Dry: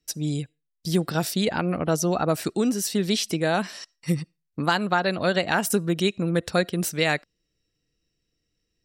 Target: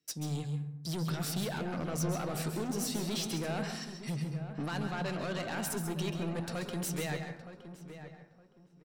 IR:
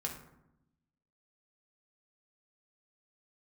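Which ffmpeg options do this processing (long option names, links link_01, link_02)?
-filter_complex "[0:a]highpass=frequency=100:width=0.5412,highpass=frequency=100:width=1.3066,alimiter=limit=-17dB:level=0:latency=1:release=32,asoftclip=type=tanh:threshold=-28dB,flanger=delay=6.1:depth=2.6:regen=-80:speed=1.5:shape=triangular,asplit=2[link_01][link_02];[link_02]adelay=916,lowpass=frequency=1800:poles=1,volume=-11dB,asplit=2[link_03][link_04];[link_04]adelay=916,lowpass=frequency=1800:poles=1,volume=0.25,asplit=2[link_05][link_06];[link_06]adelay=916,lowpass=frequency=1800:poles=1,volume=0.25[link_07];[link_01][link_03][link_05][link_07]amix=inputs=4:normalize=0,asplit=2[link_08][link_09];[1:a]atrim=start_sample=2205,adelay=134[link_10];[link_09][link_10]afir=irnorm=-1:irlink=0,volume=-7dB[link_11];[link_08][link_11]amix=inputs=2:normalize=0"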